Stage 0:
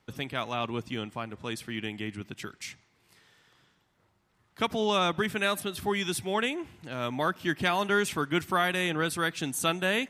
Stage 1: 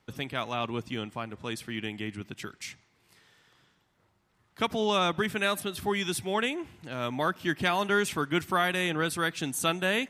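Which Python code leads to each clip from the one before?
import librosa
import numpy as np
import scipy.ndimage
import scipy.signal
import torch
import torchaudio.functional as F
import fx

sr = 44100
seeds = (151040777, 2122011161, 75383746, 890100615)

y = x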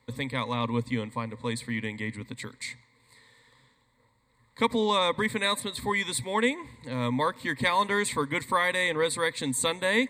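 y = fx.ripple_eq(x, sr, per_octave=0.99, db=16)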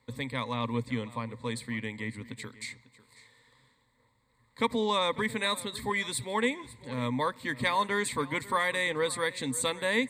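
y = x + 10.0 ** (-18.5 / 20.0) * np.pad(x, (int(547 * sr / 1000.0), 0))[:len(x)]
y = y * librosa.db_to_amplitude(-3.0)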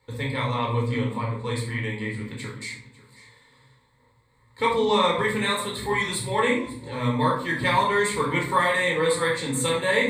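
y = fx.room_shoebox(x, sr, seeds[0], volume_m3=670.0, walls='furnished', distance_m=4.3)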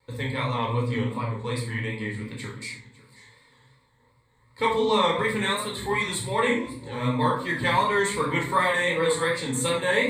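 y = fx.vibrato(x, sr, rate_hz=2.7, depth_cents=60.0)
y = y * librosa.db_to_amplitude(-1.0)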